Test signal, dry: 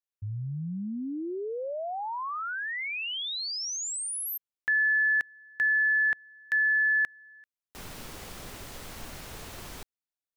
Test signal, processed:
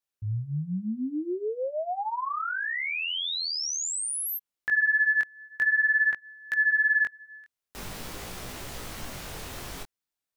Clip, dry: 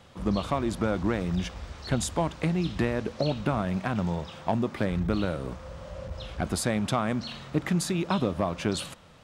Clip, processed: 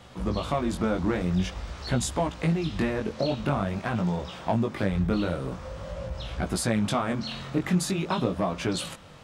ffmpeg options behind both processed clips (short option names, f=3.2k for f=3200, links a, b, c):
-filter_complex "[0:a]asplit=2[a][b];[b]acompressor=threshold=-37dB:ratio=6:attack=1.9:release=165:knee=6:detection=rms,volume=-1.5dB[c];[a][c]amix=inputs=2:normalize=0,flanger=delay=16:depth=7.3:speed=0.47,volume=2.5dB"